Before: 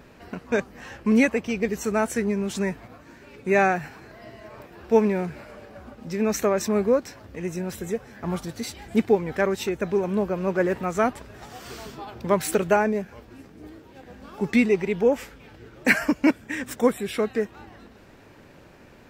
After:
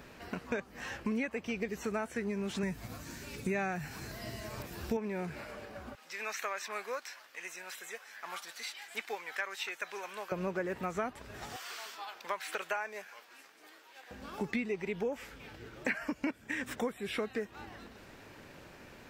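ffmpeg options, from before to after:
-filter_complex "[0:a]asettb=1/sr,asplit=3[s0][s1][s2];[s0]atrim=end=2.634[s3];[s1]atrim=start=2.63:end=4.97,asetpts=PTS-STARTPTS,afade=t=in:d=0.004:c=qsin,afade=t=out:st=2.336:d=0.004:c=qsin,bass=f=250:g=10,treble=f=4000:g=15[s4];[s2]atrim=start=4.966[s5];[s3][s4]acrossfade=d=0.004:c1=hsin:c2=qsin[s6];[s6][s5]acrossfade=d=0.004:c1=qsin:c2=hsin,asettb=1/sr,asplit=3[s7][s8][s9];[s7]atrim=end=5.954[s10];[s8]atrim=start=5.95:end=10.32,asetpts=PTS-STARTPTS,afade=t=in:d=0.004:c=qsin,afade=t=out:st=4.366:d=0.004:c=qsin,highpass=1200[s11];[s9]atrim=start=10.316[s12];[s10][s11]acrossfade=d=0.004:c1=hsin:c2=qsin[s13];[s13][s12]acrossfade=d=0.004:c1=qsin:c2=hsin,asettb=1/sr,asplit=3[s14][s15][s16];[s14]atrim=end=11.564[s17];[s15]atrim=start=11.56:end=14.11,asetpts=PTS-STARTPTS,afade=t=in:d=0.004:c=qsin,afade=t=out:st=2.546:d=0.004:c=qsin,highpass=920[s18];[s16]atrim=start=14.106[s19];[s17][s18]acrossfade=d=0.004:c1=hsin:c2=qsin[s20];[s20][s19]acrossfade=d=0.004:c1=qsin:c2=hsin,acrossover=split=3600[s21][s22];[s22]acompressor=threshold=0.00398:ratio=4:attack=1:release=60[s23];[s21][s23]amix=inputs=2:normalize=0,tiltshelf=f=970:g=-3,acompressor=threshold=0.0282:ratio=5,volume=0.841"

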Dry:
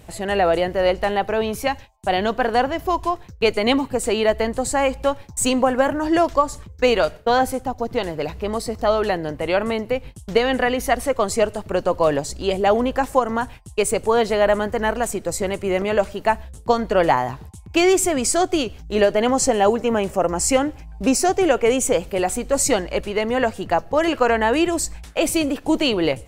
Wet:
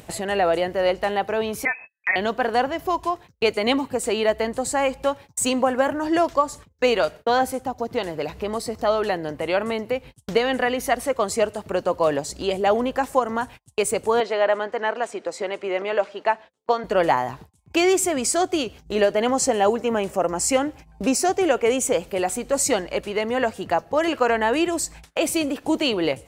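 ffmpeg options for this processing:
-filter_complex "[0:a]asettb=1/sr,asplit=3[s0][s1][s2];[s0]atrim=end=1.654[s3];[s1]atrim=start=1.65:end=2.16,asetpts=PTS-STARTPTS,afade=t=in:d=0.004:c=qsin,afade=t=out:st=0.506:d=0.004:c=qsin,lowpass=f=2200:t=q:w=0.5098,lowpass=f=2200:t=q:w=0.6013,lowpass=f=2200:t=q:w=0.9,lowpass=f=2200:t=q:w=2.563,afreqshift=-2600[s4];[s2]atrim=start=2.156[s5];[s3][s4]acrossfade=d=0.004:c1=hsin:c2=qsin[s6];[s6][s5]acrossfade=d=0.004:c1=qsin:c2=hsin,asettb=1/sr,asplit=3[s7][s8][s9];[s7]atrim=end=14.204[s10];[s8]atrim=start=14.2:end=16.84,asetpts=PTS-STARTPTS,afade=t=in:d=0.004:c=qsin,afade=t=out:st=2.636:d=0.004:c=qsin,highpass=360,lowpass=4300[s11];[s9]atrim=start=16.836[s12];[s10][s11]acrossfade=d=0.004:c1=hsin:c2=qsin[s13];[s13][s12]acrossfade=d=0.004:c1=qsin:c2=hsin,agate=range=0.0447:threshold=0.0178:ratio=16:detection=peak,highpass=f=160:p=1,acompressor=mode=upward:threshold=0.0794:ratio=2.5,volume=0.794"

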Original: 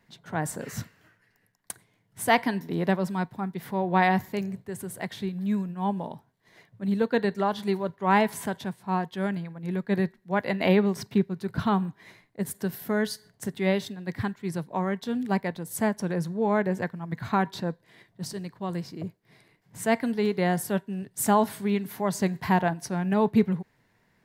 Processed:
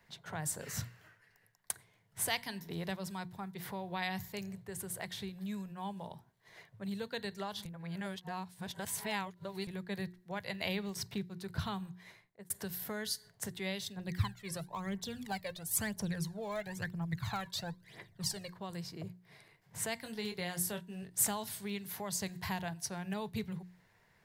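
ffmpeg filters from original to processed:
-filter_complex "[0:a]asplit=3[s0][s1][s2];[s0]afade=t=out:st=13.95:d=0.02[s3];[s1]aphaser=in_gain=1:out_gain=1:delay=1.9:decay=0.69:speed=1:type=triangular,afade=t=in:st=13.95:d=0.02,afade=t=out:st=18.52:d=0.02[s4];[s2]afade=t=in:st=18.52:d=0.02[s5];[s3][s4][s5]amix=inputs=3:normalize=0,asettb=1/sr,asplit=3[s6][s7][s8];[s6]atrim=end=20.034[s9];[s7]atrim=start=20.03:end=21.2,asetpts=PTS-STARTPTS,afade=t=in:d=0.004:c=qsin,afade=t=out:st=1.166:d=0.004:c=qsin,asplit=2[s10][s11];[s11]adelay=23,volume=0.422[s12];[s10][s12]amix=inputs=2:normalize=0,atrim=end_sample=51597[s13];[s8]atrim=start=21.196[s14];[s9][s13]acrossfade=d=0.004:c1=hsin:c2=qsin[s15];[s15][s14]acrossfade=d=0.004:c1=qsin:c2=hsin,asplit=4[s16][s17][s18][s19];[s16]atrim=end=7.652[s20];[s17]atrim=start=7.648:end=9.672,asetpts=PTS-STARTPTS,areverse[s21];[s18]atrim=start=9.668:end=12.5,asetpts=PTS-STARTPTS,afade=t=out:st=2.202:d=0.63[s22];[s19]atrim=start=12.5,asetpts=PTS-STARTPTS,afade=t=in:d=0.004:c=hsin[s23];[s20][s21]acrossfade=d=0.004:c1=hsin:c2=hsin[s24];[s22][s23]concat=n=2:v=0:a=1[s25];[s24][s25]acrossfade=d=0.004:c1=hsin:c2=hsin,equalizer=f=260:t=o:w=0.94:g=-9.5,bandreject=f=60:t=h:w=6,bandreject=f=120:t=h:w=6,bandreject=f=180:t=h:w=6,bandreject=f=240:t=h:w=6,bandreject=f=300:t=h:w=6,bandreject=f=360:t=h:w=6,acrossover=split=130|3000[s26][s27][s28];[s27]acompressor=threshold=0.00631:ratio=3[s29];[s26][s29][s28]amix=inputs=3:normalize=0"

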